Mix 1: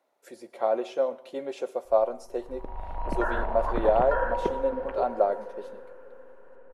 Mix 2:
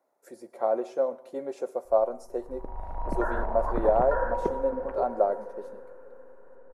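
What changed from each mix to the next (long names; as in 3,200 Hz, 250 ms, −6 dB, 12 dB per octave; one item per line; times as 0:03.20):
master: add parametric band 3,100 Hz −14 dB 1.1 octaves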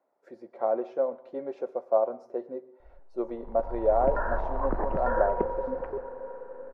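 speech: add high-frequency loss of the air 260 metres
background: entry +0.95 s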